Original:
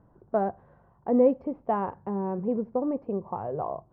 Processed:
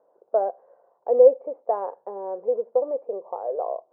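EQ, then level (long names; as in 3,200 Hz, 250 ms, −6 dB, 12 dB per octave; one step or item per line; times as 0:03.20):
four-pole ladder band-pass 550 Hz, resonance 60%
spectral tilt +3.5 dB per octave
parametric band 630 Hz +7 dB 1.1 octaves
+8.5 dB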